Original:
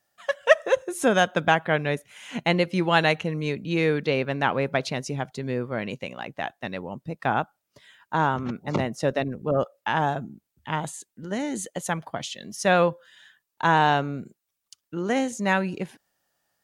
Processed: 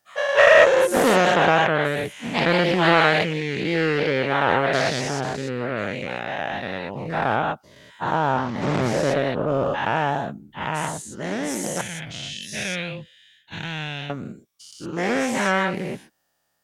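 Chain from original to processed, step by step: spectral dilation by 0.24 s; 11.81–14.1 EQ curve 110 Hz 0 dB, 1200 Hz -24 dB, 2200 Hz +1 dB, 7200 Hz -6 dB; Doppler distortion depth 0.35 ms; gain -3 dB

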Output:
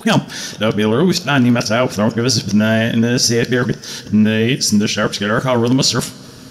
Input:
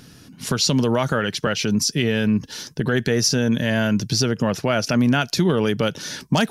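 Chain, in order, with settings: whole clip reversed; two-slope reverb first 0.31 s, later 4.6 s, from -21 dB, DRR 11 dB; gain +5 dB

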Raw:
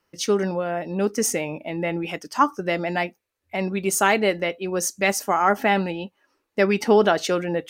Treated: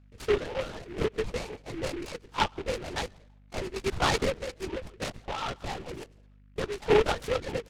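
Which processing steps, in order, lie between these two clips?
tracing distortion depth 0.052 ms; notch 1900 Hz, Q 17; 4.38–6.77 compressor 3:1, threshold -25 dBFS, peak gain reduction 9 dB; notches 60/120/180 Hz; comb 2.2 ms, depth 88%; de-esser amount 50%; plate-style reverb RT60 0.68 s, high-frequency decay 0.55×, pre-delay 0.11 s, DRR 13.5 dB; reverb removal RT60 0.81 s; LPC vocoder at 8 kHz whisper; hum 50 Hz, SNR 25 dB; noise-modulated delay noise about 1800 Hz, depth 0.087 ms; gain -9 dB

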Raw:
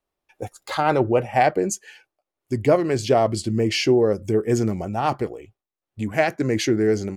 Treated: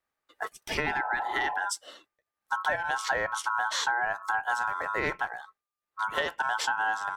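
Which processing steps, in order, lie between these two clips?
compressor 10:1, threshold -22 dBFS, peak gain reduction 11 dB; ring modulator 1200 Hz; spectral repair 0.88–1.58, 410–1100 Hz after

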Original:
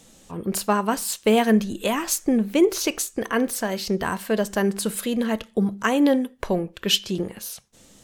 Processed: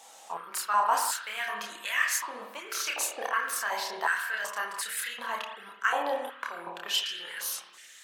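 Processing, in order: reverse; compressor, threshold -28 dBFS, peak gain reduction 15 dB; reverse; spring tank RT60 1.2 s, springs 52 ms, chirp 65 ms, DRR 4 dB; chorus voices 4, 0.43 Hz, delay 29 ms, depth 1.1 ms; stepped high-pass 2.7 Hz 810–1800 Hz; gain +4 dB

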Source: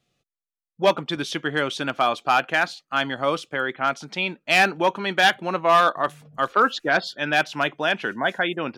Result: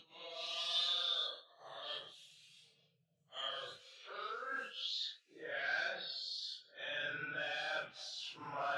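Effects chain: ten-band EQ 125 Hz +10 dB, 250 Hz -11 dB, 500 Hz +7 dB, 1000 Hz -12 dB, 2000 Hz -11 dB, 4000 Hz +10 dB, 8000 Hz +6 dB; level quantiser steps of 18 dB; band-pass sweep 3600 Hz -> 730 Hz, 5.76–8.44; Paulstretch 4.3×, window 0.05 s, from 5.6; gain +6.5 dB

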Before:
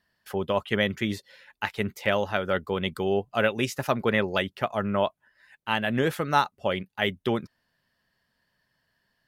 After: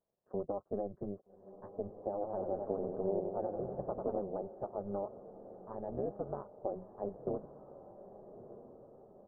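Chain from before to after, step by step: CVSD 64 kbps; HPF 300 Hz 12 dB/oct; tilt -2 dB/oct; comb 1.8 ms, depth 92%; compressor, threshold -23 dBFS, peak gain reduction 9 dB; Gaussian blur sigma 12 samples; AM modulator 200 Hz, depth 80%; diffused feedback echo 1.251 s, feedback 51%, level -13 dB; 2.11–4.22 warbling echo 93 ms, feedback 68%, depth 102 cents, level -5 dB; gain -3 dB

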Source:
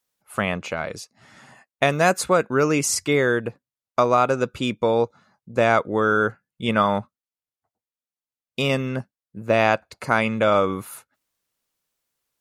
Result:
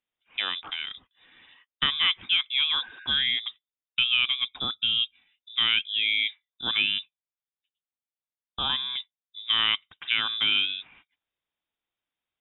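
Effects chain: spectral repair 2.85–3.08, 820–2200 Hz before; inverted band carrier 3700 Hz; gain -6 dB

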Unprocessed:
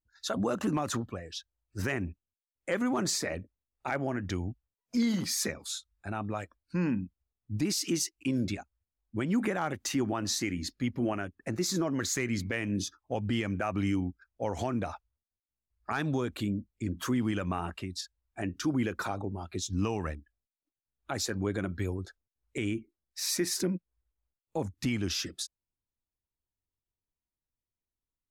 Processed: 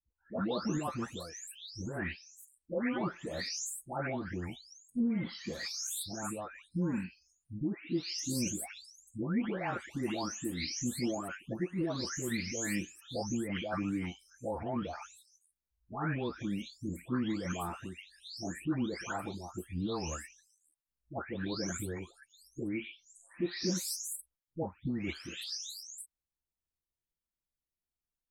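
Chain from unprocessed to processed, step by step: spectral delay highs late, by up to 0.594 s; gain -2.5 dB

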